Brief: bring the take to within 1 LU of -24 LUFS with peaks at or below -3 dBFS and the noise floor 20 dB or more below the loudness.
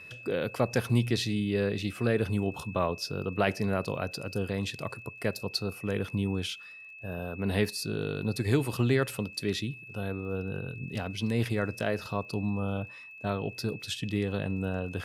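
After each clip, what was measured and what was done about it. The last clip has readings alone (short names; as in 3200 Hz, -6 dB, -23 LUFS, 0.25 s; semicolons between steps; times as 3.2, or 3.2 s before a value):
ticks 31/s; steady tone 2600 Hz; tone level -45 dBFS; loudness -31.5 LUFS; peak -10.5 dBFS; loudness target -24.0 LUFS
-> de-click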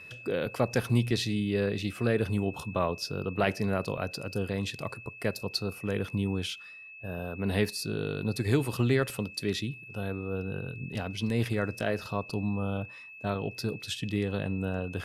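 ticks 0.33/s; steady tone 2600 Hz; tone level -45 dBFS
-> notch 2600 Hz, Q 30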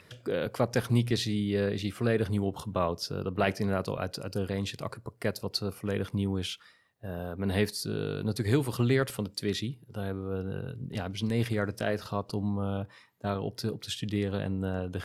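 steady tone none; loudness -31.5 LUFS; peak -11.0 dBFS; loudness target -24.0 LUFS
-> gain +7.5 dB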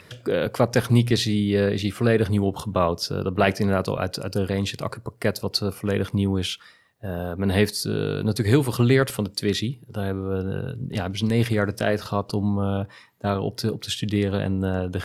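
loudness -24.0 LUFS; peak -3.5 dBFS; noise floor -51 dBFS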